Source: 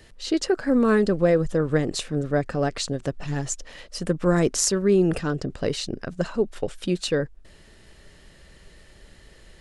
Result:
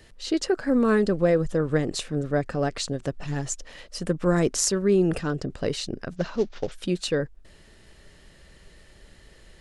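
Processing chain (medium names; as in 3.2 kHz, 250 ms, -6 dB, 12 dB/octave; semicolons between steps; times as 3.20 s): 6.16–6.72 s: CVSD coder 32 kbps; trim -1.5 dB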